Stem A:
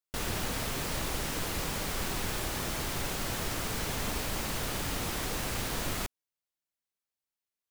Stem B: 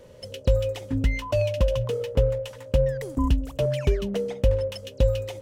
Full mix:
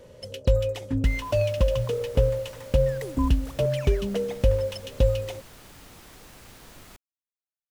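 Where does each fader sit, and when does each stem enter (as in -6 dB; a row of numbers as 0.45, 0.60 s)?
-14.5, 0.0 dB; 0.90, 0.00 s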